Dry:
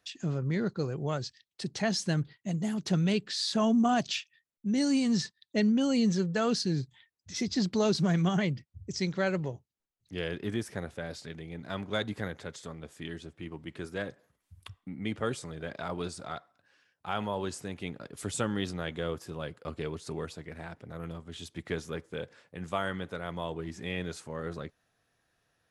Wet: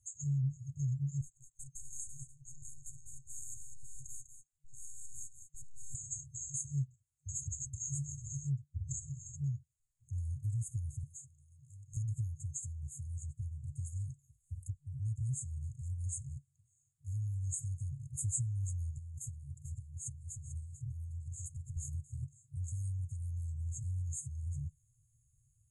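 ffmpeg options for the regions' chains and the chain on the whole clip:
-filter_complex "[0:a]asettb=1/sr,asplit=3[a][b][c];[a]atrim=end=1.214[d];[b]atrim=start=1.21:end=5.95,asetpts=PTS-STARTPTS,afade=t=in:d=0.004:c=qsin,afade=t=out:st=4.736:d=0.004:c=qsin,highpass=340,aeval=exprs='(tanh(200*val(0)+0.45)-tanh(0.45))/200':c=same,aecho=1:1:198:0.335,atrim=end_sample=209034[e];[c]atrim=start=5.946[f];[d][e]acrossfade=d=0.004:c1=hsin:c2=qsin[g];[g][f]acrossfade=d=0.004:c1=qsin:c2=hsin,asettb=1/sr,asplit=3[h][i][j];[h]atrim=end=11.044[k];[i]atrim=start=11.04:end=11.97,asetpts=PTS-STARTPTS,afade=t=in:d=0.004:c=qsin,afade=t=out:st=0.926:d=0.004:c=qsin,highpass=310,aemphasis=mode=reproduction:type=cd,volume=24.5dB,asoftclip=hard,volume=-24.5dB[l];[j]atrim=start=11.966[m];[k][l]acrossfade=d=0.004:c1=hsin:c2=qsin[n];[n][m]acrossfade=d=0.004:c1=qsin:c2=hsin,asettb=1/sr,asplit=3[o][p][q];[o]atrim=end=18.984[r];[p]atrim=start=18.98:end=21.77,asetpts=PTS-STARTPTS,afade=t=in:d=0.004:c=qsin,afade=t=out:st=2.786:d=0.004:c=qsin,acompressor=threshold=-42dB:ratio=5:attack=3.2:release=140:knee=1:detection=peak,aecho=1:1:442:0.251,atrim=end_sample=123039[s];[q]atrim=start=21.766[t];[r][s]acrossfade=d=0.004:c1=hsin:c2=qsin[u];[u][t]acrossfade=d=0.004:c1=qsin:c2=hsin,afftfilt=real='re*(1-between(b*sr/4096,140,6400))':imag='im*(1-between(b*sr/4096,140,6400))':win_size=4096:overlap=0.75,lowpass=f=8.7k:w=0.5412,lowpass=f=8.7k:w=1.3066,acompressor=threshold=-48dB:ratio=2.5,volume=12dB"

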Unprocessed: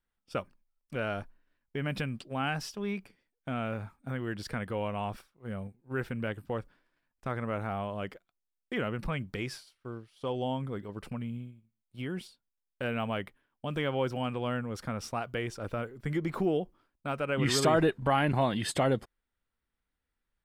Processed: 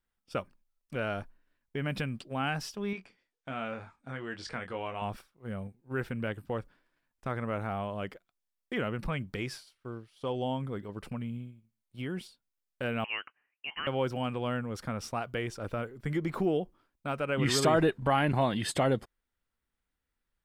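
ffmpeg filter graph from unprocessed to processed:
-filter_complex "[0:a]asettb=1/sr,asplit=3[a][b][c];[a]atrim=end=2.934[d];[b]atrim=start=2.93:end=5.02,asetpts=PTS-STARTPTS,afade=t=in:d=0.004:c=qsin,afade=t=out:st=2.086:d=0.004:c=qsin,lowpass=f=7.7k:w=0.5412,lowpass=f=7.7k:w=1.3066,lowshelf=f=350:g=-9.5,asplit=2[e][f];[f]adelay=22,volume=-7dB[g];[e][g]amix=inputs=2:normalize=0,atrim=end_sample=92169[h];[c]atrim=start=5.016[i];[d][h]acrossfade=d=0.004:c1=hsin:c2=qsin[j];[j][i]acrossfade=d=0.004:c1=qsin:c2=hsin,asettb=1/sr,asplit=3[k][l][m];[k]atrim=end=13.044[n];[l]atrim=start=13.04:end=13.87,asetpts=PTS-STARTPTS,afade=t=in:d=0.004:c=qsin,afade=t=out:st=0.826:d=0.004:c=qsin,highpass=f=520:w=0.5412,highpass=f=520:w=1.3066,lowpass=f=2.9k:t=q:w=0.5098,lowpass=f=2.9k:t=q:w=0.6013,lowpass=f=2.9k:t=q:w=0.9,lowpass=f=2.9k:t=q:w=2.563,afreqshift=-3400[o];[m]atrim=start=13.866[p];[n][o]acrossfade=d=0.004:c1=hsin:c2=qsin[q];[q][p]acrossfade=d=0.004:c1=qsin:c2=hsin"

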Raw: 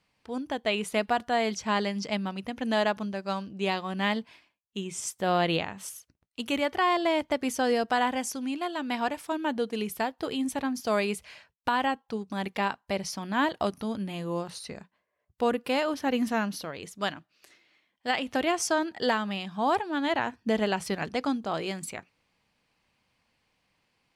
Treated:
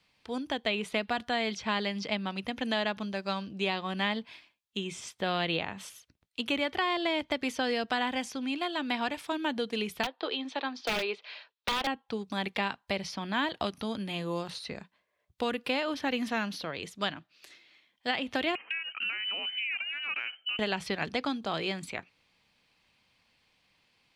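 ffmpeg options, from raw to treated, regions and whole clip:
-filter_complex "[0:a]asettb=1/sr,asplit=3[a][b][c];[a]atrim=end=10.034[d];[b]atrim=start=10.03:end=11.87,asetpts=PTS-STARTPTS,afade=t=in:d=0.004:c=qsin,afade=t=out:st=1.836:d=0.004:c=qsin,highpass=f=340:w=0.5412,highpass=f=340:w=1.3066,equalizer=f=1.1k:t=q:w=4:g=4,equalizer=f=2.1k:t=q:w=4:g=-3,equalizer=f=3.9k:t=q:w=4:g=3,lowpass=f=4.7k:w=0.5412,lowpass=f=4.7k:w=1.3066,aeval=exprs='(mod(9.44*val(0)+1,2)-1)/9.44':c=same,bandreject=f=1.1k:w=16[e];[c]atrim=start=11.866[f];[d][e]acrossfade=d=0.004:c1=hsin:c2=qsin[g];[g][f]acrossfade=d=0.004:c1=qsin:c2=hsin,asettb=1/sr,asplit=3[h][i][j];[h]atrim=end=18.554[k];[i]atrim=start=18.55:end=20.59,asetpts=PTS-STARTPTS,afade=t=in:d=0.004:c=qsin,afade=t=out:st=2.036:d=0.004:c=qsin,lowpass=f=2.7k:t=q:w=0.5098,lowpass=f=2.7k:t=q:w=0.6013,lowpass=f=2.7k:t=q:w=0.9,lowpass=f=2.7k:t=q:w=2.563,afreqshift=-3200,acompressor=threshold=-34dB:ratio=4:attack=3.2:release=140:knee=1:detection=peak,highpass=f=190:w=0.5412,highpass=f=190:w=1.3066[l];[j]atrim=start=20.586[m];[k][l]acrossfade=d=0.004:c1=hsin:c2=qsin[n];[n][m]acrossfade=d=0.004:c1=qsin:c2=hsin,equalizer=f=3.4k:t=o:w=1.3:g=8,bandreject=f=2.9k:w=22,acrossover=split=320|1500|4000[o][p][q][r];[o]acompressor=threshold=-36dB:ratio=4[s];[p]acompressor=threshold=-32dB:ratio=4[t];[q]acompressor=threshold=-32dB:ratio=4[u];[r]acompressor=threshold=-50dB:ratio=4[v];[s][t][u][v]amix=inputs=4:normalize=0"

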